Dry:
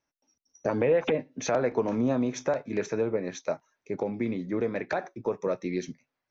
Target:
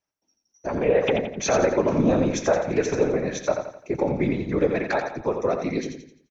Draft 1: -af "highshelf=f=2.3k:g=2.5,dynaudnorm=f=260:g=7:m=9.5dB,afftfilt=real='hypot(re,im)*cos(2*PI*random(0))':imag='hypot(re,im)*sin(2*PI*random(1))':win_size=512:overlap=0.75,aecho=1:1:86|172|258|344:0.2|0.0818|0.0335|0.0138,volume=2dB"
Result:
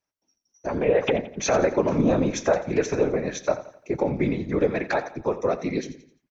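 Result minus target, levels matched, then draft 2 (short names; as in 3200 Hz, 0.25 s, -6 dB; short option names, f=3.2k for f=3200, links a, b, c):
echo-to-direct -7.5 dB
-af "highshelf=f=2.3k:g=2.5,dynaudnorm=f=260:g=7:m=9.5dB,afftfilt=real='hypot(re,im)*cos(2*PI*random(0))':imag='hypot(re,im)*sin(2*PI*random(1))':win_size=512:overlap=0.75,aecho=1:1:86|172|258|344|430:0.473|0.194|0.0795|0.0326|0.0134,volume=2dB"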